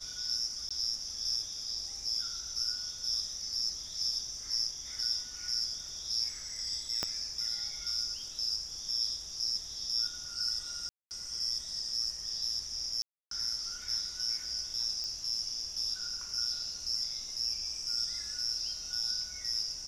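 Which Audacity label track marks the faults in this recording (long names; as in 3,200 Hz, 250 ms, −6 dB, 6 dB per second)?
0.690000	0.710000	drop-out 16 ms
7.030000	7.030000	click −17 dBFS
10.890000	11.110000	drop-out 219 ms
13.020000	13.310000	drop-out 293 ms
15.040000	15.040000	click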